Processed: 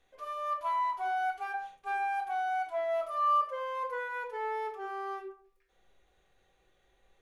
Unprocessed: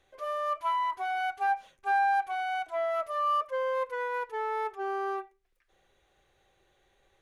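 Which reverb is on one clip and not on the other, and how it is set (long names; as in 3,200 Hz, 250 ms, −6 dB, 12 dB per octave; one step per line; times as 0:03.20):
rectangular room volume 490 cubic metres, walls furnished, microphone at 1.8 metres
level −5 dB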